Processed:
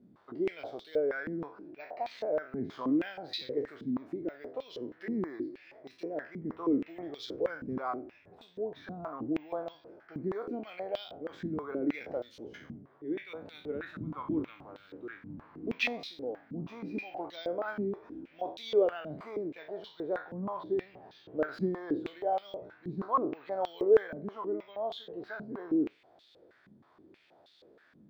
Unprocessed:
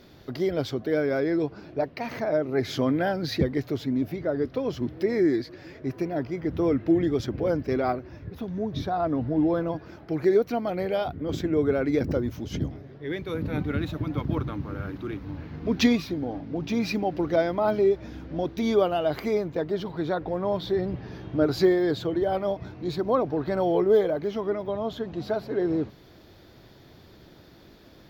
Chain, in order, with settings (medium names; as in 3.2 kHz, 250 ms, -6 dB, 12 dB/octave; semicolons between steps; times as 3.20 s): spectral sustain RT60 0.42 s; careless resampling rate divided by 2×, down none, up zero stuff; step-sequenced band-pass 6.3 Hz 210–3700 Hz